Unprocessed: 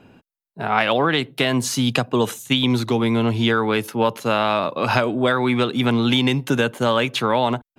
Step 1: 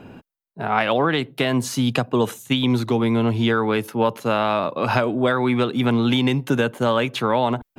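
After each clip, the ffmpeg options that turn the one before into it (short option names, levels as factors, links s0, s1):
-af "equalizer=f=5800:w=0.34:g=-5,areverse,acompressor=mode=upward:threshold=0.0251:ratio=2.5,areverse"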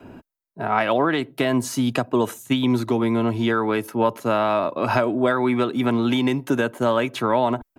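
-af "equalizer=f=3400:t=o:w=1.2:g=-5.5,aecho=1:1:3.1:0.31,adynamicequalizer=threshold=0.0224:dfrequency=120:dqfactor=0.74:tfrequency=120:tqfactor=0.74:attack=5:release=100:ratio=0.375:range=2:mode=cutabove:tftype=bell"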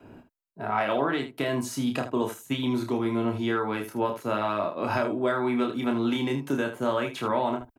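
-af "aecho=1:1:29|78:0.596|0.299,volume=0.422"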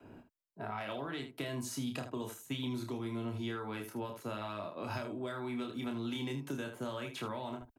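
-filter_complex "[0:a]acrossover=split=160|3000[s0][s1][s2];[s1]acompressor=threshold=0.0224:ratio=6[s3];[s0][s3][s2]amix=inputs=3:normalize=0,volume=0.531"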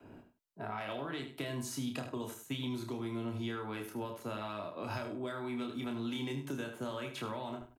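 -filter_complex "[0:a]asplit=2[s0][s1];[s1]adelay=99.13,volume=0.224,highshelf=f=4000:g=-2.23[s2];[s0][s2]amix=inputs=2:normalize=0"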